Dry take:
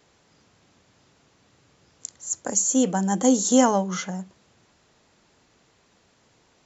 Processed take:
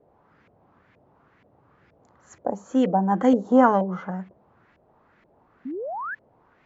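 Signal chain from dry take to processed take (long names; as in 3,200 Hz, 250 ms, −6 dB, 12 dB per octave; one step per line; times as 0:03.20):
auto-filter low-pass saw up 2.1 Hz 540–2,200 Hz
sound drawn into the spectrogram rise, 0:05.65–0:06.15, 240–1,800 Hz −31 dBFS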